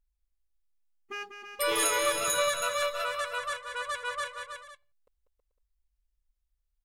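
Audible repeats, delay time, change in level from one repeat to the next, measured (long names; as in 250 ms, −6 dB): 4, 193 ms, repeats not evenly spaced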